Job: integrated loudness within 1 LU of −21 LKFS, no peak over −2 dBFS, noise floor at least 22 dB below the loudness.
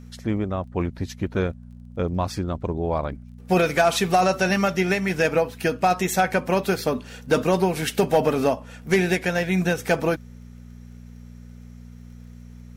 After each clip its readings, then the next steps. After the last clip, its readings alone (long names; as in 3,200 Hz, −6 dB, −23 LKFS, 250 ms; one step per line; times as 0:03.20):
crackle rate 17 per second; mains hum 60 Hz; hum harmonics up to 240 Hz; level of the hum −41 dBFS; integrated loudness −23.0 LKFS; sample peak −8.0 dBFS; target loudness −21.0 LKFS
→ click removal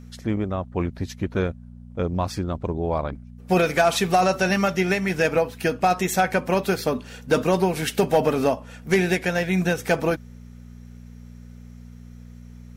crackle rate 0 per second; mains hum 60 Hz; hum harmonics up to 240 Hz; level of the hum −41 dBFS
→ hum removal 60 Hz, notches 4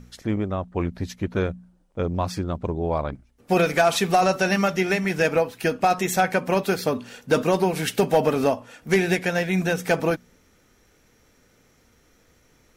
mains hum none found; integrated loudness −23.5 LKFS; sample peak −8.0 dBFS; target loudness −21.0 LKFS
→ level +2.5 dB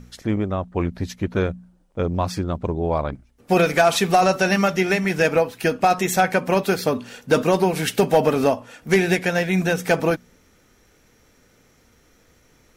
integrated loudness −21.0 LKFS; sample peak −5.5 dBFS; background noise floor −58 dBFS